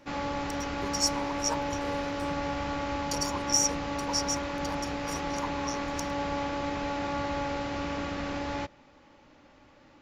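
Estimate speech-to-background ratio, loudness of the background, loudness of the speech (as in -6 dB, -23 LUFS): 0.5 dB, -32.5 LUFS, -32.0 LUFS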